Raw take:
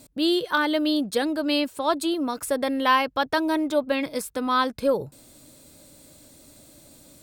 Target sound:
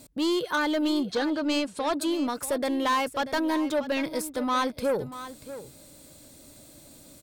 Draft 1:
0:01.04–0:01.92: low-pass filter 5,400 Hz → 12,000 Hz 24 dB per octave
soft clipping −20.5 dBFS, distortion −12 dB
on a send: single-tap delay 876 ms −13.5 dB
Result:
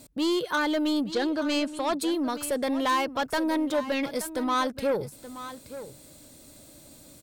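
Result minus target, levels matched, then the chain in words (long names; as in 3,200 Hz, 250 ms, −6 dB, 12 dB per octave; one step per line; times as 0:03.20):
echo 239 ms late
0:01.04–0:01.92: low-pass filter 5,400 Hz → 12,000 Hz 24 dB per octave
soft clipping −20.5 dBFS, distortion −12 dB
on a send: single-tap delay 637 ms −13.5 dB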